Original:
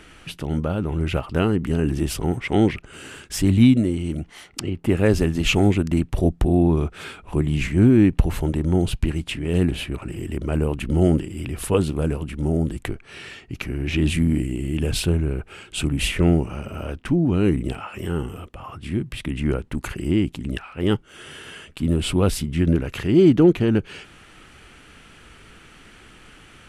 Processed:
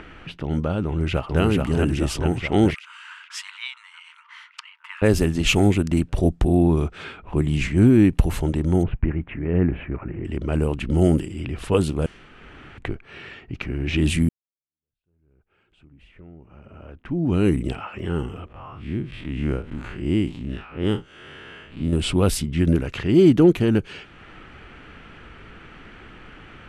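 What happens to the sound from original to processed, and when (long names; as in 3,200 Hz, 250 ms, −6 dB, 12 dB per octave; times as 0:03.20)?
0:00.86–0:01.41: delay throw 430 ms, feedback 65%, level −2.5 dB
0:02.74–0:05.02: linear-phase brick-wall high-pass 880 Hz
0:08.83–0:10.25: Butterworth low-pass 2,200 Hz
0:12.06–0:12.78: fill with room tone
0:14.29–0:17.33: fade in exponential
0:18.47–0:21.93: spectrum smeared in time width 92 ms
whole clip: upward compression, threshold −35 dBFS; high-shelf EQ 6,900 Hz +6.5 dB; low-pass that shuts in the quiet parts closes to 2,000 Hz, open at −14 dBFS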